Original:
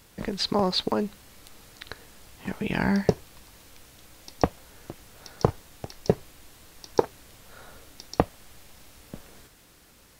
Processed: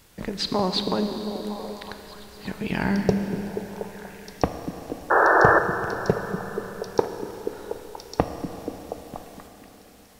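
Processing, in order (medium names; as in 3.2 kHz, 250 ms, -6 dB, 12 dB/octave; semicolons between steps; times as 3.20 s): repeats whose band climbs or falls 240 ms, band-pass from 210 Hz, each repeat 0.7 oct, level -3 dB; painted sound noise, 5.10–5.59 s, 310–1800 Hz -17 dBFS; Schroeder reverb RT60 3.9 s, combs from 26 ms, DRR 7 dB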